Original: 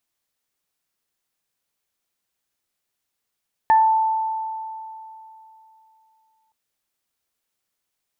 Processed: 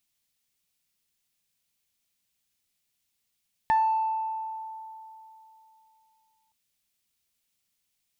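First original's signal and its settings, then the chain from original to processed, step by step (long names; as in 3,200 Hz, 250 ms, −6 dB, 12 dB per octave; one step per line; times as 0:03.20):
harmonic partials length 2.82 s, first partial 883 Hz, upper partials −11.5 dB, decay 3.05 s, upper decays 0.30 s, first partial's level −10.5 dB
flat-topped bell 730 Hz −8.5 dB 2.8 octaves
in parallel at −10 dB: soft clipping −30.5 dBFS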